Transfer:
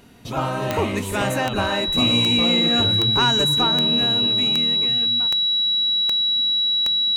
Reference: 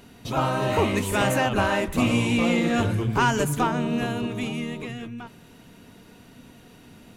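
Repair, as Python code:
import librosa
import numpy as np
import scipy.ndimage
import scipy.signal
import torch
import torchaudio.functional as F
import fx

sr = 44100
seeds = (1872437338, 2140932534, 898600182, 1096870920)

y = fx.fix_declick_ar(x, sr, threshold=10.0)
y = fx.notch(y, sr, hz=3900.0, q=30.0)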